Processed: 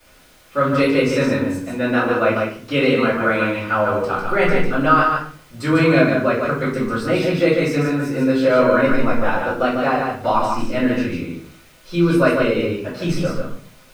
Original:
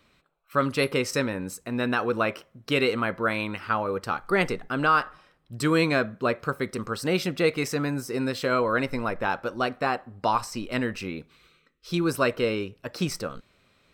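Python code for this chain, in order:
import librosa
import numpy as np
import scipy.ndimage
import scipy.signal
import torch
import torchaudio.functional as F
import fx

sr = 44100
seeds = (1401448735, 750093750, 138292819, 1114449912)

y = fx.dmg_noise_colour(x, sr, seeds[0], colour='white', level_db=-52.0)
y = fx.high_shelf(y, sr, hz=5700.0, db=-10.5)
y = y + 10.0 ** (-4.5 / 20.0) * np.pad(y, (int(147 * sr / 1000.0), 0))[:len(y)]
y = fx.room_shoebox(y, sr, seeds[1], volume_m3=38.0, walls='mixed', distance_m=2.4)
y = F.gain(torch.from_numpy(y), -6.5).numpy()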